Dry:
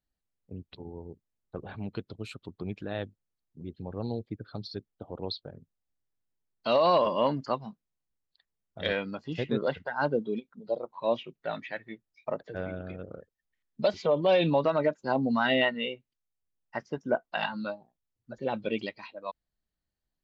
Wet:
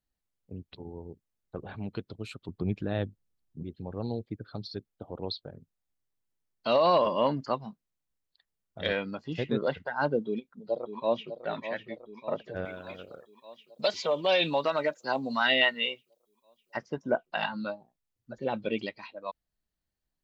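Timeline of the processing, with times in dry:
2.48–3.63 s: bass shelf 350 Hz +8 dB
10.24–11.37 s: echo throw 600 ms, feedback 70%, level -10 dB
12.65–16.77 s: tilt EQ +3.5 dB/octave

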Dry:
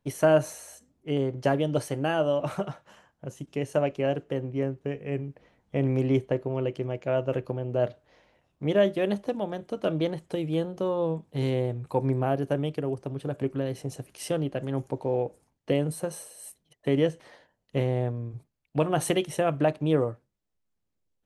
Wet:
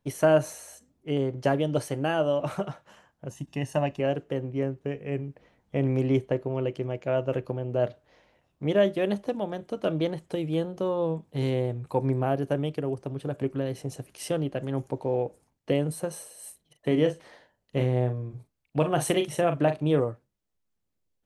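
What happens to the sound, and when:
3.30–4.00 s: comb 1.1 ms
16.35–20.00 s: doubling 40 ms -9 dB

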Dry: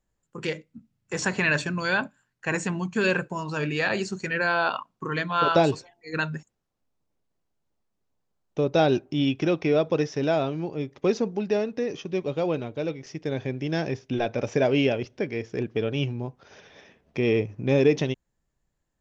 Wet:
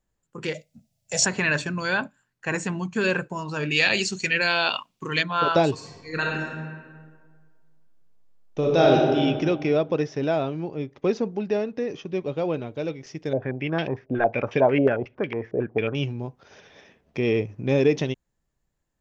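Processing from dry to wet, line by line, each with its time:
0.54–1.26 s: FFT filter 160 Hz 0 dB, 360 Hz -15 dB, 640 Hz +15 dB, 1.1 kHz -12 dB, 2.2 kHz +1 dB, 5.5 kHz +12 dB
3.71–5.23 s: resonant high shelf 1.9 kHz +9.5 dB, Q 1.5
5.73–9.19 s: reverb throw, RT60 1.7 s, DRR -2 dB
9.77–12.68 s: low-pass 3.9 kHz 6 dB/octave
13.33–15.95 s: step-sequenced low-pass 11 Hz 610–3000 Hz

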